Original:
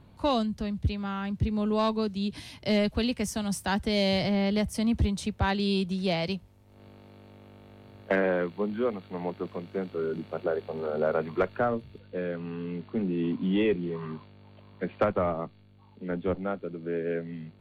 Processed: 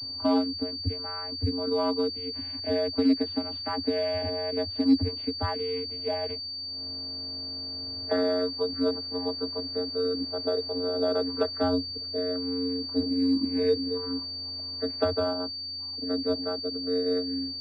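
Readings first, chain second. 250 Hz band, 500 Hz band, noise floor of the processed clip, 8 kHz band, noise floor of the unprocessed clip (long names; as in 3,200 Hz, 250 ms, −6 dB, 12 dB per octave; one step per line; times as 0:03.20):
+0.5 dB, +1.0 dB, −36 dBFS, below −15 dB, −56 dBFS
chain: hearing-aid frequency compression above 1,600 Hz 1.5 to 1
in parallel at 0 dB: downward compressor, threshold −41 dBFS, peak gain reduction 19.5 dB
on the sum: channel vocoder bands 16, square 90 Hz
switching amplifier with a slow clock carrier 4,600 Hz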